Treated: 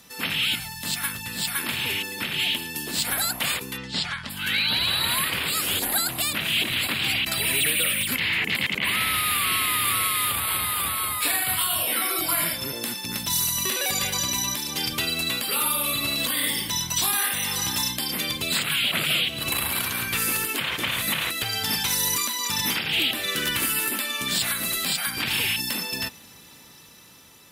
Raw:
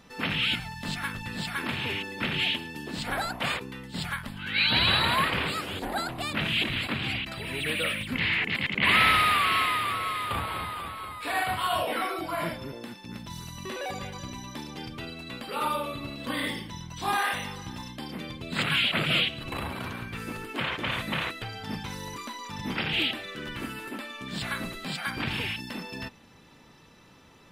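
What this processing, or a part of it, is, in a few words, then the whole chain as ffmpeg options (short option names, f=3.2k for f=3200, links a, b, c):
FM broadcast chain: -filter_complex "[0:a]highpass=45,dynaudnorm=f=800:g=9:m=13dB,acrossover=split=360|1300[a][b][c];[a]acompressor=threshold=-33dB:ratio=4[d];[b]acompressor=threshold=-35dB:ratio=4[e];[c]acompressor=threshold=-27dB:ratio=4[f];[d][e][f]amix=inputs=3:normalize=0,aemphasis=mode=production:type=75fm,alimiter=limit=-14.5dB:level=0:latency=1:release=354,asoftclip=type=hard:threshold=-17dB,lowpass=f=15k:w=0.5412,lowpass=f=15k:w=1.3066,aemphasis=mode=production:type=75fm,aemphasis=mode=reproduction:type=50kf,asplit=3[g][h][i];[g]afade=t=out:st=3.76:d=0.02[j];[h]lowpass=f=5.8k:w=0.5412,lowpass=f=5.8k:w=1.3066,afade=t=in:st=3.76:d=0.02,afade=t=out:st=4.29:d=0.02[k];[i]afade=t=in:st=4.29:d=0.02[l];[j][k][l]amix=inputs=3:normalize=0"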